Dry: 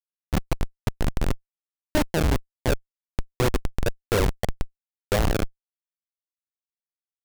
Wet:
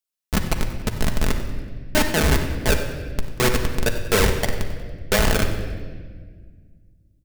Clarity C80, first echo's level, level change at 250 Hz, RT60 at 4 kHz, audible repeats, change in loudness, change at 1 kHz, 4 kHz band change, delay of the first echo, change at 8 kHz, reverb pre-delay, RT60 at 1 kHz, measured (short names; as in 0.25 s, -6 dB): 8.0 dB, -14.5 dB, +3.5 dB, 1.3 s, 2, +4.5 dB, +4.5 dB, +8.5 dB, 94 ms, +9.5 dB, 5 ms, 1.3 s